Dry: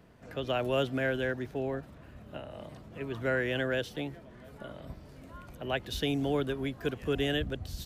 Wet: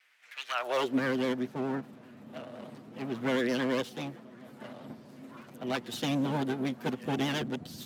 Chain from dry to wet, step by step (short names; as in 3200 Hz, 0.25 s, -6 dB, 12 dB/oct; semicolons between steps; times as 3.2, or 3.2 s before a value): minimum comb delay 8.1 ms; vibrato 9.8 Hz 65 cents; high-pass sweep 2100 Hz -> 210 Hz, 0.42–1